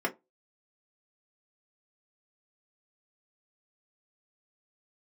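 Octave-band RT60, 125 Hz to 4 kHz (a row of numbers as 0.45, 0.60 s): 0.20, 0.20, 0.20, 0.20, 0.15, 0.10 s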